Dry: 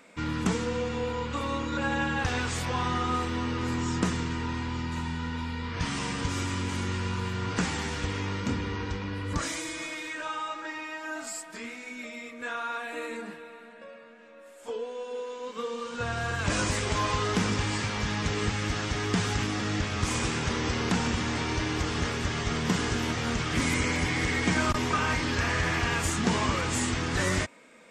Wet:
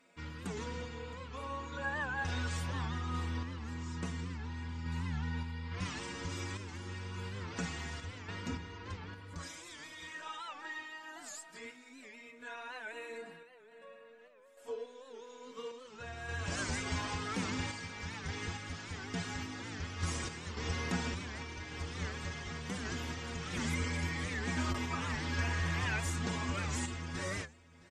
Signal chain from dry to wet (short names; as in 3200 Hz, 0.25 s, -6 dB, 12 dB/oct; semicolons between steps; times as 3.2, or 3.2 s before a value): metallic resonator 83 Hz, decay 0.24 s, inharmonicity 0.008; echo 0.664 s -22 dB; random-step tremolo; record warp 78 rpm, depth 160 cents